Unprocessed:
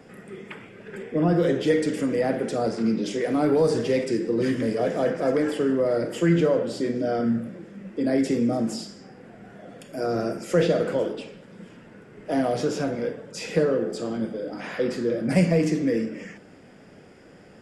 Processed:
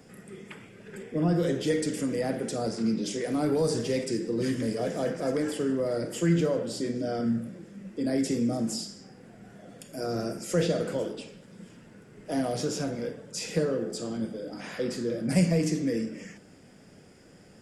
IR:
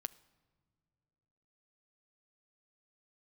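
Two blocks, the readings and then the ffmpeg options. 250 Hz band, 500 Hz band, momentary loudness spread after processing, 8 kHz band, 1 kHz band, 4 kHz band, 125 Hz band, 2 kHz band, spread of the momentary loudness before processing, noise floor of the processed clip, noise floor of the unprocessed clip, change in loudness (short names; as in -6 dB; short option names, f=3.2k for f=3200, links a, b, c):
-4.0 dB, -6.0 dB, 19 LU, +3.5 dB, -6.5 dB, -0.5 dB, -2.5 dB, -6.0 dB, 18 LU, -53 dBFS, -49 dBFS, -4.5 dB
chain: -af "bass=f=250:g=5,treble=f=4k:g=11,volume=-6.5dB"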